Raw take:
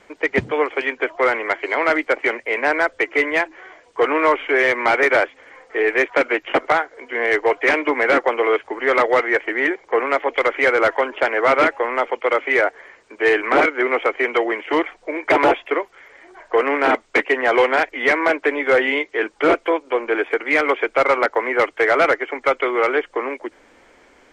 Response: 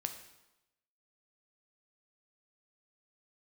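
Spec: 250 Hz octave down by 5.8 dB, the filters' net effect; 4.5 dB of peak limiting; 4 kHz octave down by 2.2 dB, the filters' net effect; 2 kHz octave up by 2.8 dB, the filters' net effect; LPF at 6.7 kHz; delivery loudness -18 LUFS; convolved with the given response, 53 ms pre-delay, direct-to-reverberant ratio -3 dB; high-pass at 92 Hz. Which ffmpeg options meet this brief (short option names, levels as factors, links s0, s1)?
-filter_complex "[0:a]highpass=92,lowpass=6700,equalizer=f=250:t=o:g=-9,equalizer=f=2000:t=o:g=4.5,equalizer=f=4000:t=o:g=-5.5,alimiter=limit=0.422:level=0:latency=1,asplit=2[s0][s1];[1:a]atrim=start_sample=2205,adelay=53[s2];[s1][s2]afir=irnorm=-1:irlink=0,volume=1.41[s3];[s0][s3]amix=inputs=2:normalize=0,volume=0.668"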